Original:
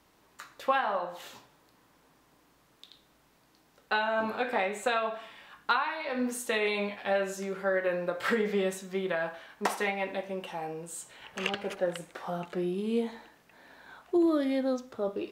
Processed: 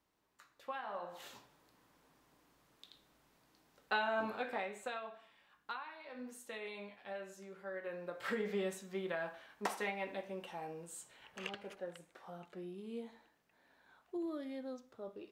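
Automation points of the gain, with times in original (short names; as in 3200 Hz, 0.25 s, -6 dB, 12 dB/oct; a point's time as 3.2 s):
0.76 s -16.5 dB
1.24 s -6 dB
4.12 s -6 dB
5.2 s -17 dB
7.63 s -17 dB
8.51 s -8.5 dB
10.97 s -8.5 dB
11.92 s -15.5 dB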